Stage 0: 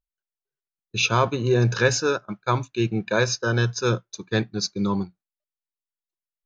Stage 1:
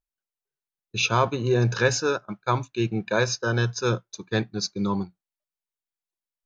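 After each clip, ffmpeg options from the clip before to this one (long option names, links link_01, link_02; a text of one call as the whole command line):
ffmpeg -i in.wav -af "equalizer=frequency=820:width_type=o:width=0.77:gain=2.5,volume=-2dB" out.wav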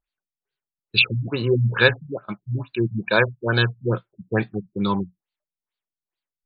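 ffmpeg -i in.wav -af "crystalizer=i=6:c=0,afftfilt=real='re*lt(b*sr/1024,200*pow(4900/200,0.5+0.5*sin(2*PI*2.3*pts/sr)))':imag='im*lt(b*sr/1024,200*pow(4900/200,0.5+0.5*sin(2*PI*2.3*pts/sr)))':win_size=1024:overlap=0.75,volume=2.5dB" out.wav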